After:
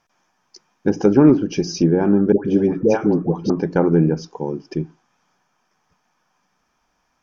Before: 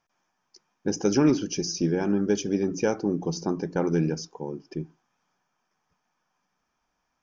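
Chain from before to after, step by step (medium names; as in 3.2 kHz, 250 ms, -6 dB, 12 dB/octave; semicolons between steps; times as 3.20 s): low-pass that closes with the level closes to 1.2 kHz, closed at -20.5 dBFS; 2.32–3.50 s: phase dispersion highs, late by 133 ms, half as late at 920 Hz; trim +9 dB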